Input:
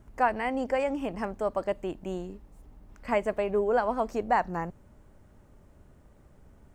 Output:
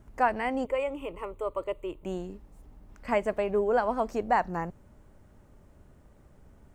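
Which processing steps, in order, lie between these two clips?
0.65–2.05 fixed phaser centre 1100 Hz, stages 8

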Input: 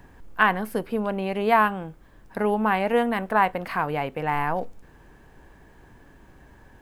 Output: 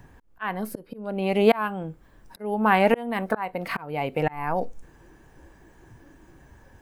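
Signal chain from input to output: auto swell 0.538 s; spectral noise reduction 9 dB; gain +7 dB

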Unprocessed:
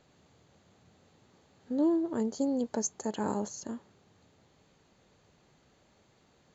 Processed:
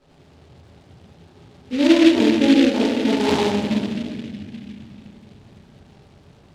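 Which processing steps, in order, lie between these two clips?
LPF 1700 Hz 24 dB/oct; reverb RT60 1.9 s, pre-delay 3 ms, DRR -12.5 dB; noise-modulated delay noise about 2600 Hz, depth 0.1 ms; gain -1 dB

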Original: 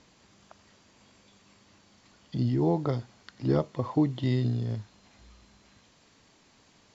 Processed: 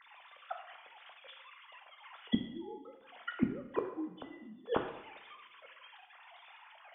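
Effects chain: sine-wave speech; flipped gate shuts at -31 dBFS, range -36 dB; two-slope reverb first 0.77 s, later 2.2 s, from -24 dB, DRR 3.5 dB; gain +14 dB

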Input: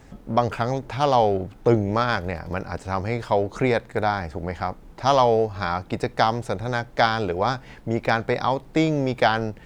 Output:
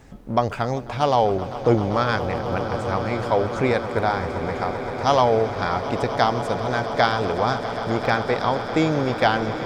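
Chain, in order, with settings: swelling echo 0.13 s, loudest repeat 8, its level -16 dB

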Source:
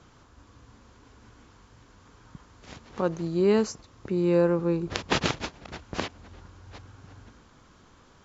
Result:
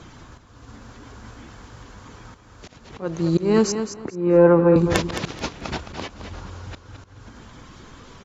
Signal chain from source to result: bin magnitudes rounded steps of 15 dB; 3.72–4.76 three-band isolator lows -13 dB, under 160 Hz, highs -20 dB, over 2100 Hz; in parallel at -6 dB: sine folder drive 6 dB, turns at -6.5 dBFS; on the sum: auto swell 0.379 s; feedback echo 0.216 s, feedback 21%, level -9 dB; gain +4 dB

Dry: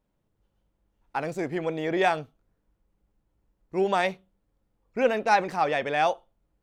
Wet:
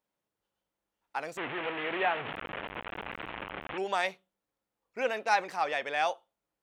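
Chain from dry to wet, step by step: 1.37–3.78 delta modulation 16 kbps, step -22 dBFS; HPF 920 Hz 6 dB/oct; gain -2 dB

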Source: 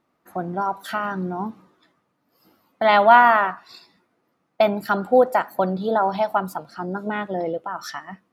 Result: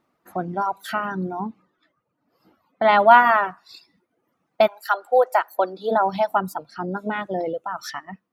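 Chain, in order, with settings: 4.66–5.9 HPF 730 Hz -> 290 Hz 24 dB/oct; reverb removal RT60 0.73 s; 1.39–2.98 LPF 1600 Hz -> 2800 Hz 6 dB/oct; gain +1 dB

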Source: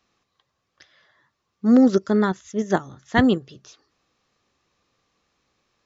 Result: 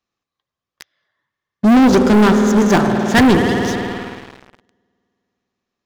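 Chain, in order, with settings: spring tank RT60 3.3 s, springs 52 ms, chirp 55 ms, DRR 9.5 dB; sample leveller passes 5; gain -2 dB

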